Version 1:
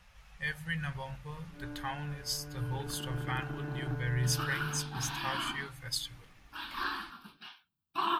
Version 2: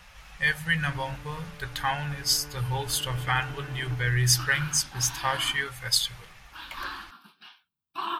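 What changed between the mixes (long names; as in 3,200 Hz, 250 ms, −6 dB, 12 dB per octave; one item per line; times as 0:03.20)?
speech +11.5 dB
first sound: entry −0.75 s
master: add low-shelf EQ 390 Hz −5.5 dB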